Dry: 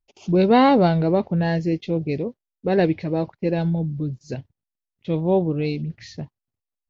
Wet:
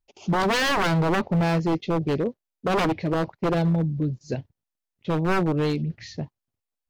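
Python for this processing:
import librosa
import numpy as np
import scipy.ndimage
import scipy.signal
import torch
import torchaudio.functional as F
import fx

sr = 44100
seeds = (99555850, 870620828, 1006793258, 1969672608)

y = fx.peak_eq(x, sr, hz=590.0, db=2.5, octaves=2.5)
y = 10.0 ** (-17.0 / 20.0) * (np.abs((y / 10.0 ** (-17.0 / 20.0) + 3.0) % 4.0 - 2.0) - 1.0)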